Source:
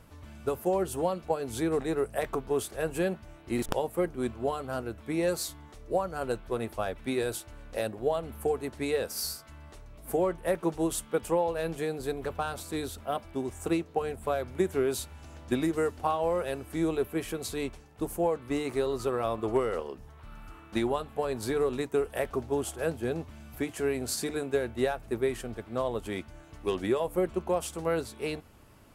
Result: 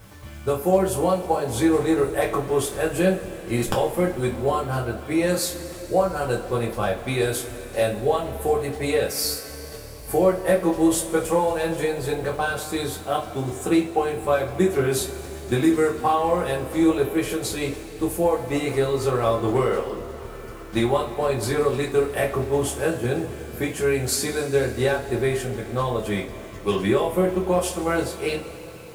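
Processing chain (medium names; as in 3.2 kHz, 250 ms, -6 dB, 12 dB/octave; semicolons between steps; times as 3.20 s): bit crusher 10-bit; two-slope reverb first 0.23 s, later 4 s, from -22 dB, DRR -3 dB; trim +4 dB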